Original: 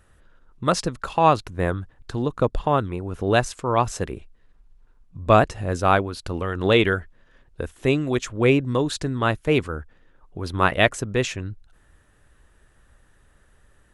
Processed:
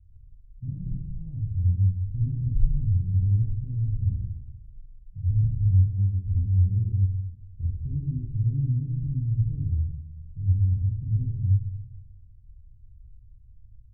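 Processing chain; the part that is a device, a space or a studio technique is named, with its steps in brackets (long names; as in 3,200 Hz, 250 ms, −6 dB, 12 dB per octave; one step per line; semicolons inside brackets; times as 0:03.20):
club heard from the street (brickwall limiter −14 dBFS, peak gain reduction 11 dB; low-pass filter 120 Hz 24 dB per octave; convolution reverb RT60 0.95 s, pre-delay 20 ms, DRR −3.5 dB)
level +2.5 dB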